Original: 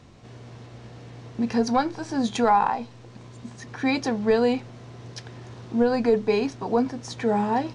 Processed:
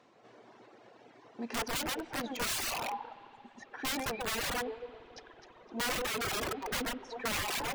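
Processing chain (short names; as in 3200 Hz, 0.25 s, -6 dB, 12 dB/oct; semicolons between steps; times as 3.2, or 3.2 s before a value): HPF 430 Hz 12 dB/oct; high shelf 3200 Hz -10.5 dB; on a send: echo with dull and thin repeats by turns 0.128 s, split 2100 Hz, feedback 58%, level -3 dB; on the sum: wrapped overs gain 23 dB; spring tank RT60 3.8 s, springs 56 ms, chirp 75 ms, DRR 8 dB; reverb removal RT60 1.8 s; gain -4.5 dB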